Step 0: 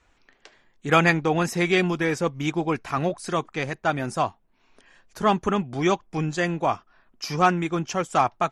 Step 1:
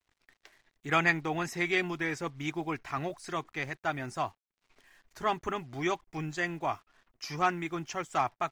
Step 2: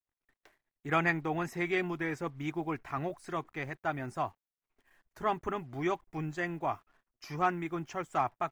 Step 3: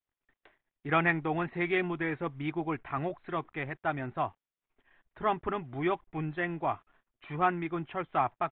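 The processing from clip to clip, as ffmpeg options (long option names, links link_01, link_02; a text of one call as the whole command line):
ffmpeg -i in.wav -af "equalizer=frequency=200:width_type=o:width=0.33:gain=-12,equalizer=frequency=500:width_type=o:width=0.33:gain=-7,equalizer=frequency=2000:width_type=o:width=0.33:gain=6,equalizer=frequency=10000:width_type=o:width=0.33:gain=-6,acrusher=bits=8:mix=0:aa=0.5,volume=-8dB" out.wav
ffmpeg -i in.wav -af "agate=range=-16dB:threshold=-60dB:ratio=16:detection=peak,equalizer=frequency=5100:width=0.53:gain=-10" out.wav
ffmpeg -i in.wav -af "aresample=8000,aresample=44100,volume=2dB" out.wav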